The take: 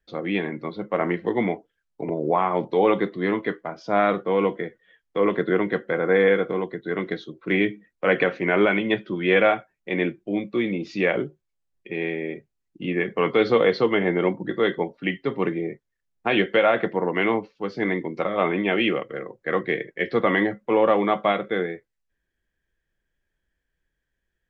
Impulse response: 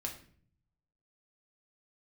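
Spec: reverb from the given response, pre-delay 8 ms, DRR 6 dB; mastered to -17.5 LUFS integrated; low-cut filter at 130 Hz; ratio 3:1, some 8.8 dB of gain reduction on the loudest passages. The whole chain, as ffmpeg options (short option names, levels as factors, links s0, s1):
-filter_complex "[0:a]highpass=130,acompressor=threshold=0.0501:ratio=3,asplit=2[s0][s1];[1:a]atrim=start_sample=2205,adelay=8[s2];[s1][s2]afir=irnorm=-1:irlink=0,volume=0.501[s3];[s0][s3]amix=inputs=2:normalize=0,volume=3.76"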